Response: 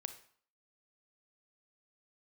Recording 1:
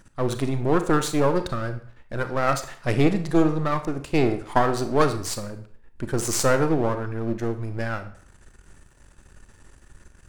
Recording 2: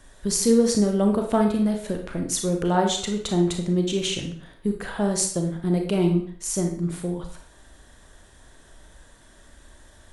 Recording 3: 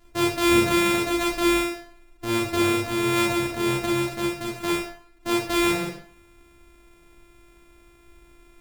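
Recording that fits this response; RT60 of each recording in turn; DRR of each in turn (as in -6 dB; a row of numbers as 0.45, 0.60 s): 1; 0.55, 0.55, 0.55 s; 9.0, 3.5, -4.5 dB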